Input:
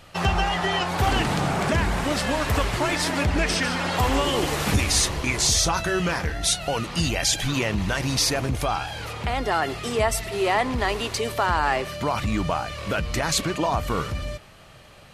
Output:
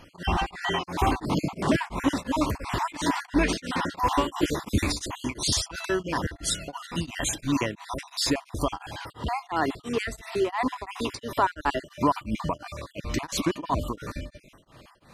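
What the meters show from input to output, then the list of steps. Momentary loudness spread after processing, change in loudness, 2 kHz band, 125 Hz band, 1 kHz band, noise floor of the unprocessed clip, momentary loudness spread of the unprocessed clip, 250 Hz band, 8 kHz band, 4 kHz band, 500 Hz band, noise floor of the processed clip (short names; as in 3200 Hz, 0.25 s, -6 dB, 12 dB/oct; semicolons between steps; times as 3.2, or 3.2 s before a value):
8 LU, -4.5 dB, -6.5 dB, -6.5 dB, -3.0 dB, -48 dBFS, 6 LU, -0.5 dB, -8.0 dB, -6.5 dB, -4.5 dB, -57 dBFS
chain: random spectral dropouts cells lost 41%; small resonant body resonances 290/990 Hz, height 10 dB, ringing for 25 ms; beating tremolo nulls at 2.9 Hz; gain -2 dB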